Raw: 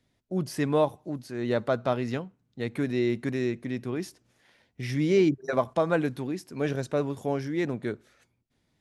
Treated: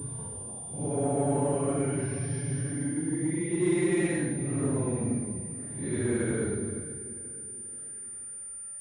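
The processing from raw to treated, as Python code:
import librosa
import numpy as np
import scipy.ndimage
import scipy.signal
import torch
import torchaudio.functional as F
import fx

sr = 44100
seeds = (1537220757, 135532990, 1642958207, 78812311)

p1 = fx.paulstretch(x, sr, seeds[0], factor=8.5, window_s=0.05, from_s=7.15)
p2 = fx.echo_feedback(p1, sr, ms=482, feedback_pct=44, wet_db=-16)
p3 = fx.env_lowpass(p2, sr, base_hz=2100.0, full_db=-27.0)
p4 = fx.low_shelf(p3, sr, hz=200.0, db=8.0)
p5 = 10.0 ** (-24.5 / 20.0) * np.tanh(p4 / 10.0 ** (-24.5 / 20.0))
p6 = p4 + F.gain(torch.from_numpy(p5), -4.0).numpy()
p7 = fx.pwm(p6, sr, carrier_hz=9200.0)
y = F.gain(torch.from_numpy(p7), -5.5).numpy()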